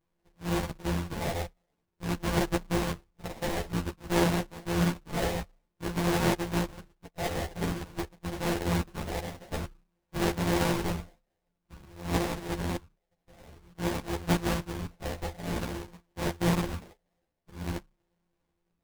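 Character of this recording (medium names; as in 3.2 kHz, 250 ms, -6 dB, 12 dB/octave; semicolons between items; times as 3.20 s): a buzz of ramps at a fixed pitch in blocks of 256 samples; phasing stages 6, 0.51 Hz, lowest notch 260–3600 Hz; aliases and images of a low sample rate 1.3 kHz, jitter 20%; a shimmering, thickened sound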